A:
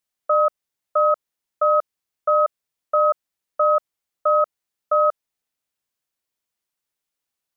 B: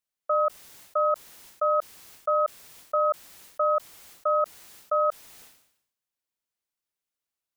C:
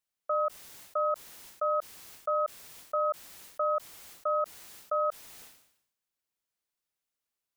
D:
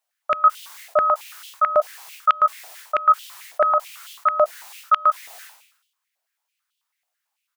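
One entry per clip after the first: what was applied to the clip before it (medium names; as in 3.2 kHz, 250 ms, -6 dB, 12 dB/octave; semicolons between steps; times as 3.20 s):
decay stretcher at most 78 dB/s; trim -6 dB
peak limiter -21.5 dBFS, peak gain reduction 6 dB
doubling 15 ms -11 dB; step-sequenced high-pass 9.1 Hz 690–3100 Hz; trim +6.5 dB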